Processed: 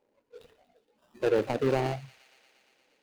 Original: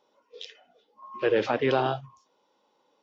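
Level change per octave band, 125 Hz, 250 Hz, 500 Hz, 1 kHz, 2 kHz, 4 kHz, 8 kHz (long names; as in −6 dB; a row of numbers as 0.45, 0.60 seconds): +1.5 dB, −1.0 dB, −2.0 dB, −6.0 dB, −6.5 dB, −7.0 dB, can't be measured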